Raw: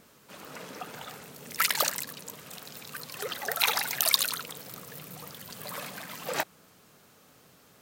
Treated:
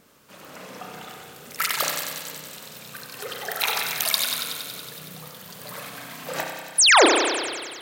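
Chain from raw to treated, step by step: painted sound fall, 6.78–7.06, 270–11000 Hz -15 dBFS; thin delay 93 ms, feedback 76%, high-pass 2600 Hz, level -6 dB; spring tank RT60 1.6 s, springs 32 ms, chirp 40 ms, DRR 1.5 dB

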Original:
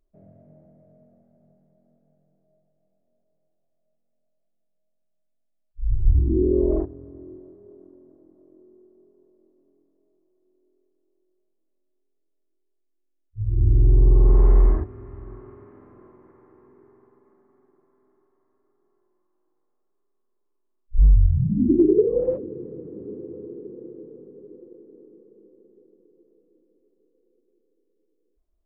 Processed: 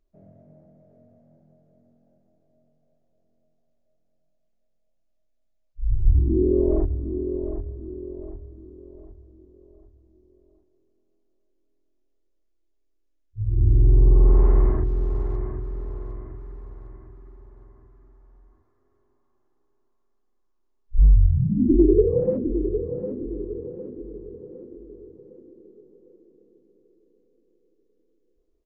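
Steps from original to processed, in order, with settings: 14.84–15.36 zero-crossing step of -51.5 dBFS; feedback echo 0.757 s, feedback 42%, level -9 dB; Vorbis 64 kbps 16000 Hz

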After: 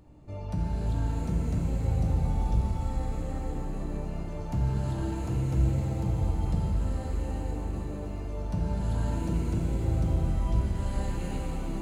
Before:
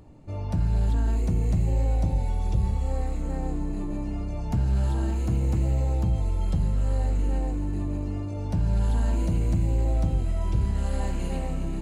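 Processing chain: shimmer reverb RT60 3.4 s, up +7 st, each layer -8 dB, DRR 0.5 dB; gain -5.5 dB

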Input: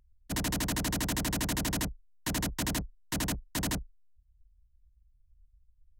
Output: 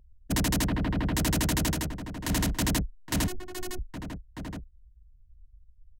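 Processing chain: Wiener smoothing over 41 samples; 1.7–2.3 compressor, threshold -38 dBFS, peak gain reduction 8 dB; outdoor echo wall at 140 m, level -12 dB; 3.27–3.79 robotiser 365 Hz; limiter -27 dBFS, peak gain reduction 11.5 dB; 0.67–1.15 air absorption 420 m; gain +8.5 dB

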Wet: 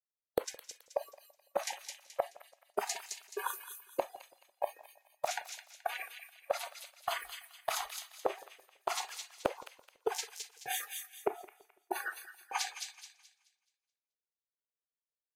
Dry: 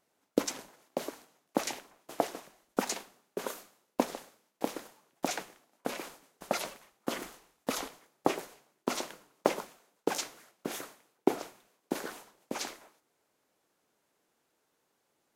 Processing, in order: spectral noise reduction 29 dB; gate -58 dBFS, range -19 dB; resonant low shelf 330 Hz -12 dB, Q 3; compressor 6:1, threshold -41 dBFS, peak gain reduction 23.5 dB; thin delay 0.214 s, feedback 32%, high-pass 2500 Hz, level -4.5 dB; warbling echo 0.167 s, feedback 37%, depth 118 cents, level -23 dB; gain +9.5 dB

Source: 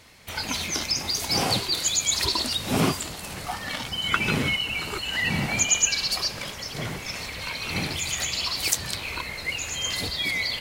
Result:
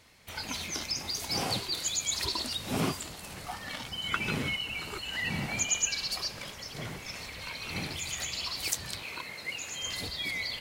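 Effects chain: 9.02–9.83 HPF 140 Hz 12 dB/oct; gain -7.5 dB

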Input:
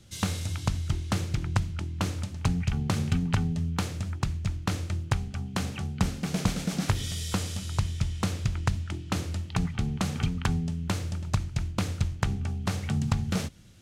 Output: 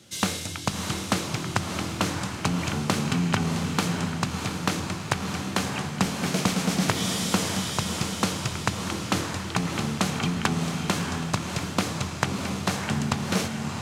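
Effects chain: HPF 210 Hz 12 dB/oct; on a send: diffused feedback echo 0.652 s, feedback 47%, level -4 dB; on the sum: gain +6.5 dB

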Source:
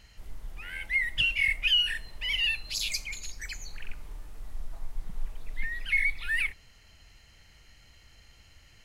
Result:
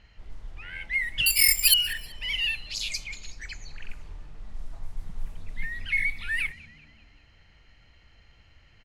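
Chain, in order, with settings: 1.26–1.74 careless resampling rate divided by 6×, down none, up zero stuff; frequency-shifting echo 0.191 s, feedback 50%, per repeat +69 Hz, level -21.5 dB; low-pass opened by the level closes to 3000 Hz, open at -24 dBFS

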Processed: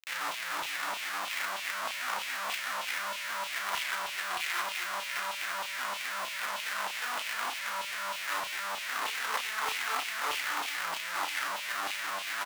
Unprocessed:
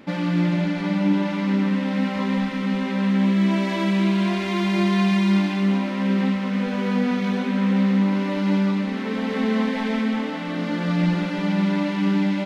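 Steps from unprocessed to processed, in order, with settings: limiter -21 dBFS, peak gain reduction 10.5 dB; chorus 1.6 Hz, delay 19.5 ms, depth 5.5 ms; Schmitt trigger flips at -40 dBFS; LFO high-pass saw down 3.2 Hz 890–3000 Hz; doubler 34 ms -8 dB

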